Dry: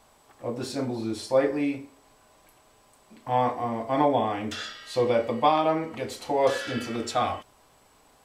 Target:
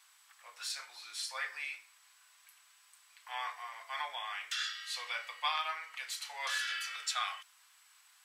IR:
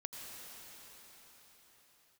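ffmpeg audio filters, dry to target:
-af "highpass=frequency=1400:width=0.5412,highpass=frequency=1400:width=1.3066"

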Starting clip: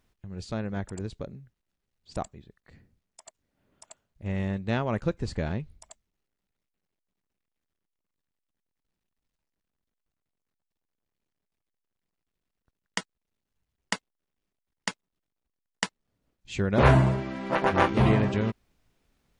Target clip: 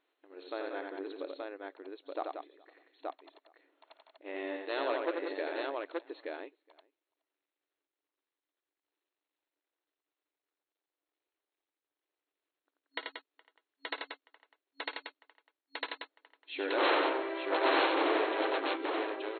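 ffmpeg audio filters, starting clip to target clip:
ffmpeg -i in.wav -filter_complex "[0:a]asplit=2[link_01][link_02];[link_02]adelay=419.8,volume=-27dB,highshelf=frequency=4000:gain=-9.45[link_03];[link_01][link_03]amix=inputs=2:normalize=0,aeval=exprs='0.112*(abs(mod(val(0)/0.112+3,4)-2)-1)':channel_layout=same,asplit=2[link_04][link_05];[link_05]aecho=0:1:55|86|183|877:0.158|0.631|0.447|0.708[link_06];[link_04][link_06]amix=inputs=2:normalize=0,afftfilt=real='re*between(b*sr/4096,270,4300)':imag='im*between(b*sr/4096,270,4300)':win_size=4096:overlap=0.75,volume=-3dB" out.wav

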